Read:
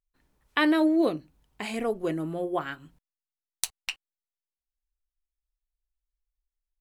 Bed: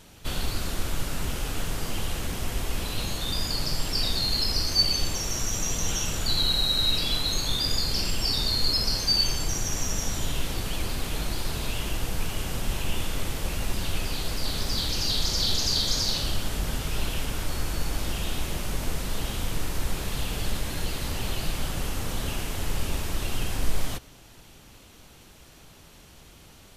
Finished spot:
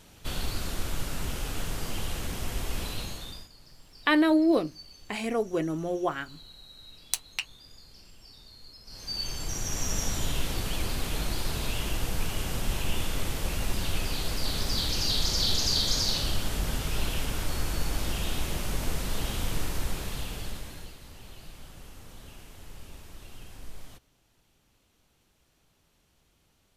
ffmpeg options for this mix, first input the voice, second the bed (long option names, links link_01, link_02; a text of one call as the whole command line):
ffmpeg -i stem1.wav -i stem2.wav -filter_complex "[0:a]adelay=3500,volume=0.5dB[link_01];[1:a]volume=22dB,afade=type=out:start_time=2.84:duration=0.65:silence=0.0707946,afade=type=in:start_time=8.85:duration=1.12:silence=0.0562341,afade=type=out:start_time=19.59:duration=1.38:silence=0.149624[link_02];[link_01][link_02]amix=inputs=2:normalize=0" out.wav